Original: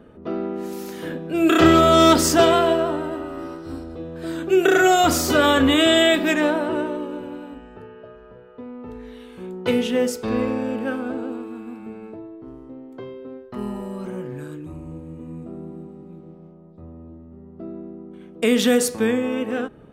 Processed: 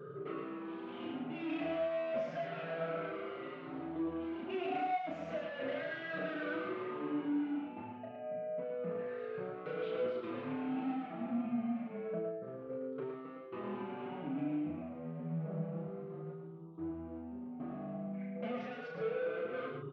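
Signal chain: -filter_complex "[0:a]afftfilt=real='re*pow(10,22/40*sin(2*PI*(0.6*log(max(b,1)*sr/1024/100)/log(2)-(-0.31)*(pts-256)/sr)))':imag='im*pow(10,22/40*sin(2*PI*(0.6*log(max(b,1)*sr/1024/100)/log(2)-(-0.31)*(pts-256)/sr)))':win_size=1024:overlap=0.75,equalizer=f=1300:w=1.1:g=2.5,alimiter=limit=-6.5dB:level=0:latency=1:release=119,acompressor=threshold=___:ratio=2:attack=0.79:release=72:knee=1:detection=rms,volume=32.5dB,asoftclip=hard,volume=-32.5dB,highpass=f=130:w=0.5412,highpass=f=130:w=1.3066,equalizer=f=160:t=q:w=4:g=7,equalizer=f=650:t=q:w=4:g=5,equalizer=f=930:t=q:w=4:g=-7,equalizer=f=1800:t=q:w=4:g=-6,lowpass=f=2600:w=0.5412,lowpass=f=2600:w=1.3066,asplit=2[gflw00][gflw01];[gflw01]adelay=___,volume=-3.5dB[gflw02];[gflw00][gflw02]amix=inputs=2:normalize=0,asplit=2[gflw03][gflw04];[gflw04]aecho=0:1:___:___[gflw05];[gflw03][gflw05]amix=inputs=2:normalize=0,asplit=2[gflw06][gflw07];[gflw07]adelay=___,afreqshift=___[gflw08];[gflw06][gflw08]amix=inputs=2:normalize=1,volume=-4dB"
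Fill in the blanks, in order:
-28dB, 34, 111, 0.562, 5.2, 0.86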